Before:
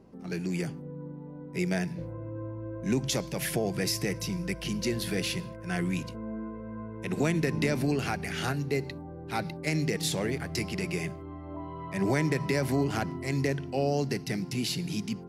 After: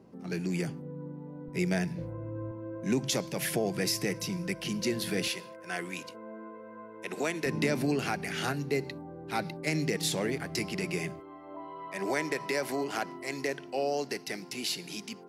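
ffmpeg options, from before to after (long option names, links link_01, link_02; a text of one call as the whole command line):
ffmpeg -i in.wav -af "asetnsamples=nb_out_samples=441:pad=0,asendcmd='1.48 highpass f 50;2.51 highpass f 150;5.28 highpass f 420;7.46 highpass f 160;11.2 highpass f 400',highpass=100" out.wav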